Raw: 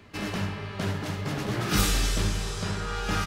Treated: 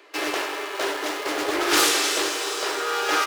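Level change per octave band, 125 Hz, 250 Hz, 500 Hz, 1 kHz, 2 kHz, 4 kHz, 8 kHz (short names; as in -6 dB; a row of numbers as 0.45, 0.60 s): -27.5, +0.5, +8.5, +9.0, +8.5, +8.5, +8.0 dB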